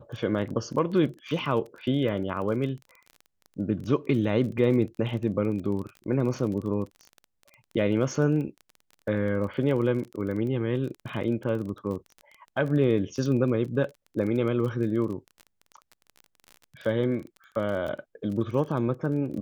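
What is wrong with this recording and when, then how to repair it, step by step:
crackle 25 per s -34 dBFS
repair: de-click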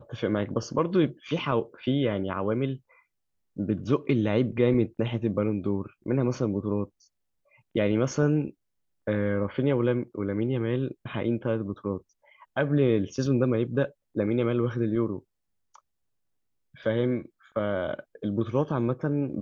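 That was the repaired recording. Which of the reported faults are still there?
nothing left

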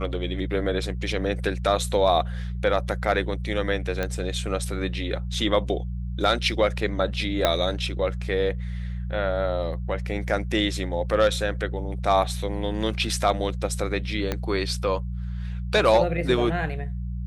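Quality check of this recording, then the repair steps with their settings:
hum 60 Hz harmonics 3 -30 dBFS
4.03 s: pop -13 dBFS
7.45 s: pop -5 dBFS
14.32 s: pop -11 dBFS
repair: de-click; de-hum 60 Hz, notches 3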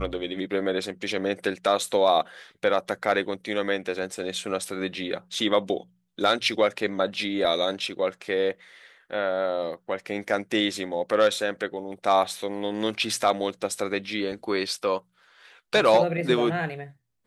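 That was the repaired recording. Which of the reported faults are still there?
4.03 s: pop
7.45 s: pop
14.32 s: pop

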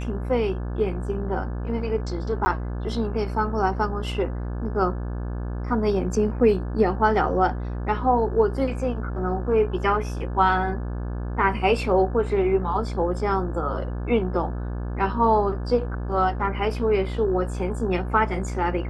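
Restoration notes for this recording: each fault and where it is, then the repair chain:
buzz 60 Hz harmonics 29 -29 dBFS
2.45–2.46 s: dropout 10 ms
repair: de-hum 60 Hz, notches 29; interpolate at 2.45 s, 10 ms

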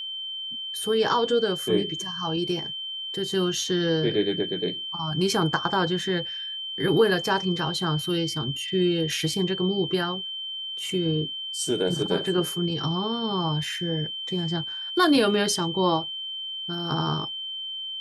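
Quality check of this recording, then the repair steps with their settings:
whine 3.1 kHz -31 dBFS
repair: band-stop 3.1 kHz, Q 30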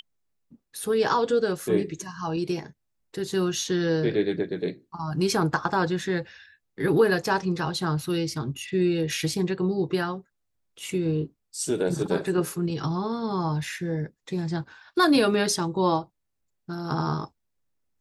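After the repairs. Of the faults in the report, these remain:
nothing left

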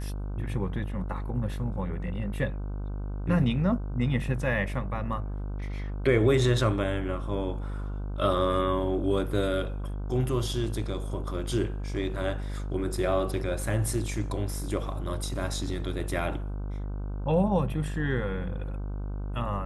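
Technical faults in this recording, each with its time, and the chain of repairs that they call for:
buzz 50 Hz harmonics 31 -33 dBFS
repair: de-hum 50 Hz, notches 31

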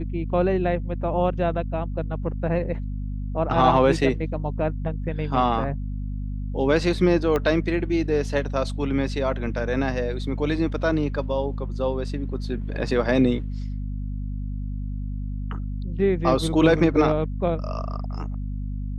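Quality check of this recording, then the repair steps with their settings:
hum 50 Hz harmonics 5 -29 dBFS
7.36 s: pop -12 dBFS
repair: de-click; de-hum 50 Hz, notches 5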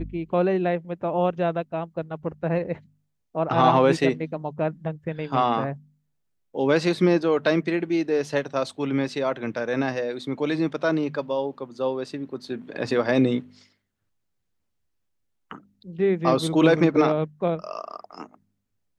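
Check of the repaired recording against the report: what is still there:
7.36 s: pop

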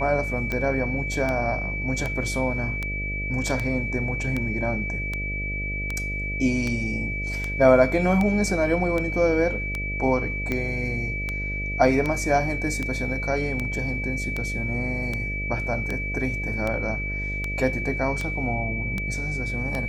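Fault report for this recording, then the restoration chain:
buzz 50 Hz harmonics 13 -31 dBFS
tick 78 rpm -14 dBFS
whine 2.3 kHz -29 dBFS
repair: de-click; de-hum 50 Hz, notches 13; band-stop 2.3 kHz, Q 30

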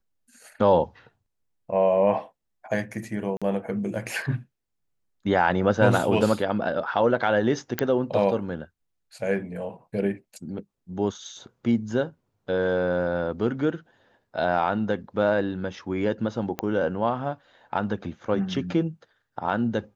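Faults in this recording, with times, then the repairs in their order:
3.37–3.42 s: dropout 46 ms
7.79 s: pop -7 dBFS
16.59 s: pop -12 dBFS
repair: de-click; interpolate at 3.37 s, 46 ms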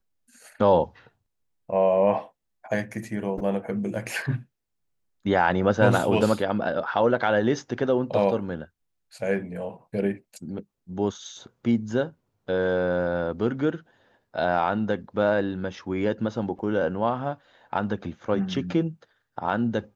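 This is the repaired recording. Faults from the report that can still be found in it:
16.59 s: pop

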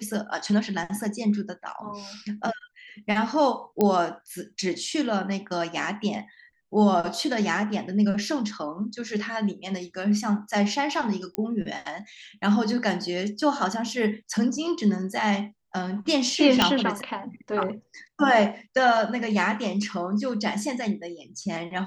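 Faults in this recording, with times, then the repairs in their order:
3.81 s: pop -10 dBFS
11.35 s: pop -13 dBFS
16.62 s: pop -3 dBFS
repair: de-click

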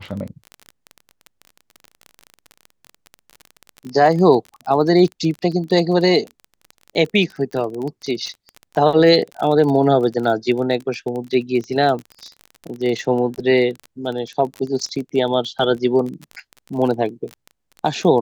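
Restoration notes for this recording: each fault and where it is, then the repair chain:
crackle 26 per s -25 dBFS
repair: de-click

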